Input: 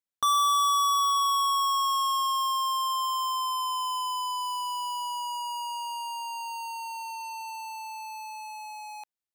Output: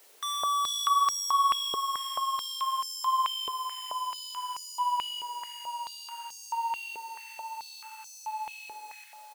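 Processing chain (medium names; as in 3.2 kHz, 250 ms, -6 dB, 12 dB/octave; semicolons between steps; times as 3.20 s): added noise white -52 dBFS; bit crusher 9-bit; on a send: delay 455 ms -8 dB; on the sum: step-sequenced high-pass 4.6 Hz 430–5800 Hz; trim -6.5 dB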